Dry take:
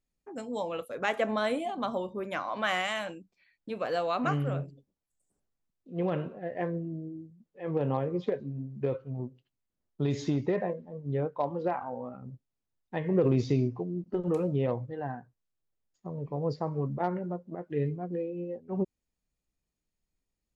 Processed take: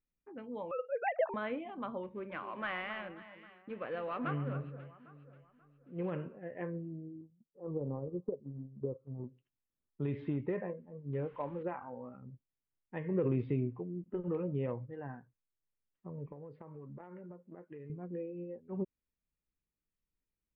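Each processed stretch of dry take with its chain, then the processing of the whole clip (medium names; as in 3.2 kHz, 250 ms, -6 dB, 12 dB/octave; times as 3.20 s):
0.71–1.34 s: formants replaced by sine waves + peaking EQ 860 Hz +11 dB 1.2 oct
2.03–6.11 s: dead-time distortion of 0.089 ms + echo whose repeats swap between lows and highs 268 ms, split 1.6 kHz, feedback 58%, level -11 dB
7.21–9.24 s: elliptic low-pass 1.2 kHz + transient shaper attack +1 dB, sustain -8 dB + low-pass that closes with the level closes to 610 Hz, closed at -28.5 dBFS
11.13–11.63 s: jump at every zero crossing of -46 dBFS + treble shelf 4.7 kHz +5.5 dB
16.32–17.90 s: bass shelf 160 Hz -9 dB + compression 12:1, threshold -37 dBFS
whole clip: steep low-pass 2.8 kHz 36 dB/octave; peaking EQ 710 Hz -8 dB 0.37 oct; trim -6.5 dB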